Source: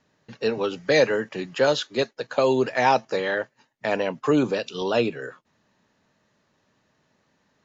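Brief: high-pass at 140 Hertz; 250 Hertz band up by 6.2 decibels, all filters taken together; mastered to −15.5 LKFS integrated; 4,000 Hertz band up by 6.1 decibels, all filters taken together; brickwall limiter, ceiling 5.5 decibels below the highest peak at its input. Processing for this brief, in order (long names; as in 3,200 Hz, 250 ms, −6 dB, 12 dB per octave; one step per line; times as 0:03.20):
high-pass filter 140 Hz
parametric band 250 Hz +8 dB
parametric band 4,000 Hz +7 dB
level +7 dB
brickwall limiter −2.5 dBFS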